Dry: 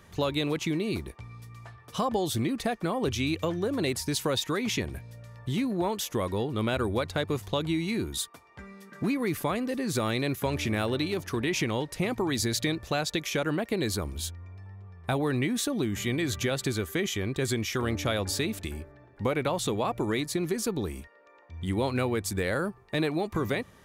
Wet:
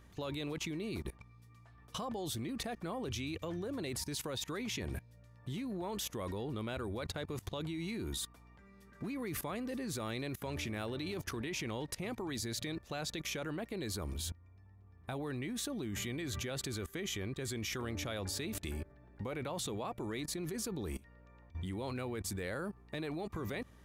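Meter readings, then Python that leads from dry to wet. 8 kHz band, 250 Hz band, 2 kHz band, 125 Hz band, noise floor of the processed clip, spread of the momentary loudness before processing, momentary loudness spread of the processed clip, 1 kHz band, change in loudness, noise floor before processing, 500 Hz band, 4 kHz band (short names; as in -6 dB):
-7.0 dB, -10.5 dB, -10.5 dB, -10.0 dB, -59 dBFS, 11 LU, 5 LU, -11.5 dB, -10.5 dB, -56 dBFS, -11.5 dB, -9.0 dB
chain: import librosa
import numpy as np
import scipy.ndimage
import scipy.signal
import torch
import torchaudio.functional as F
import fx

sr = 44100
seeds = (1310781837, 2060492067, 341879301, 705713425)

y = fx.add_hum(x, sr, base_hz=60, snr_db=22)
y = fx.level_steps(y, sr, step_db=20)
y = y * 10.0 ** (1.0 / 20.0)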